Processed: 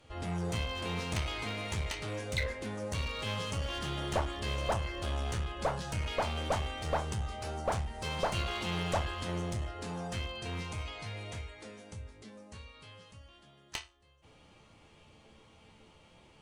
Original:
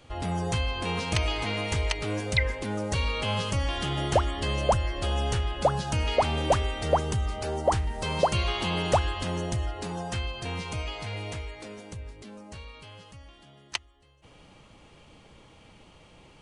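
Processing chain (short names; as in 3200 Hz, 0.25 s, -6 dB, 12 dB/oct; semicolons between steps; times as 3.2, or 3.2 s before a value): resonator bank D2 minor, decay 0.25 s; one-sided clip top -39.5 dBFS; gain +4.5 dB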